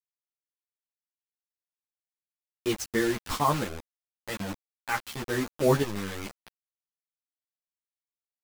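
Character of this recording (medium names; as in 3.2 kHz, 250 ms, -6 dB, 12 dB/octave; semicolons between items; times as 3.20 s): chopped level 0.91 Hz, depth 60%, duty 30%; a quantiser's noise floor 6-bit, dither none; a shimmering, thickened sound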